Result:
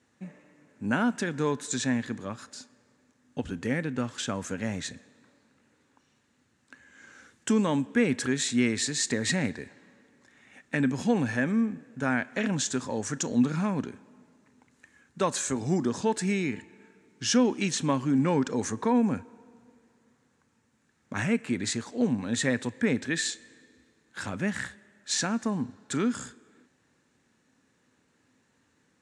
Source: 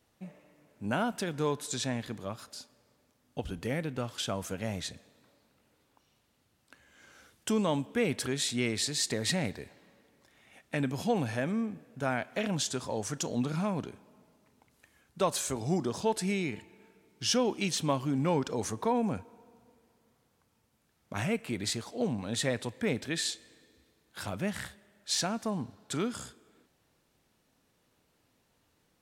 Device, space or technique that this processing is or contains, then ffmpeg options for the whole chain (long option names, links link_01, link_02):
car door speaker: -af "highpass=86,equalizer=frequency=250:width_type=q:width=4:gain=7,equalizer=frequency=670:width_type=q:width=4:gain=-6,equalizer=frequency=1700:width_type=q:width=4:gain=7,equalizer=frequency=3200:width_type=q:width=4:gain=-4,equalizer=frequency=4800:width_type=q:width=4:gain=-4,equalizer=frequency=7100:width_type=q:width=4:gain=4,lowpass=frequency=8600:width=0.5412,lowpass=frequency=8600:width=1.3066,volume=2.5dB"